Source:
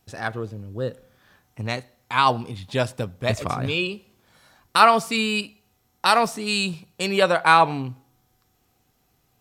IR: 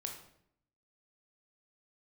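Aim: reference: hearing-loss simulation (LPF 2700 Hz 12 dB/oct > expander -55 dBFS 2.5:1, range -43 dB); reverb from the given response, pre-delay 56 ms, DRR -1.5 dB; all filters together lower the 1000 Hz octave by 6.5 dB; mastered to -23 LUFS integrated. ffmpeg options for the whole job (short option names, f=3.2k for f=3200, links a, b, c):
-filter_complex "[0:a]equalizer=f=1k:t=o:g=-8.5,asplit=2[a][b];[1:a]atrim=start_sample=2205,adelay=56[c];[b][c]afir=irnorm=-1:irlink=0,volume=3dB[d];[a][d]amix=inputs=2:normalize=0,lowpass=2.7k,agate=range=-43dB:threshold=-55dB:ratio=2.5,volume=-0.5dB"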